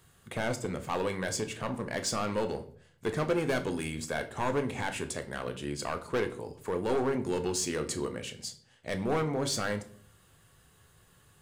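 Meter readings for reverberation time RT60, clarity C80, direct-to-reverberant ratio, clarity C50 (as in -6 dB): 0.55 s, 18.5 dB, 6.5 dB, 13.5 dB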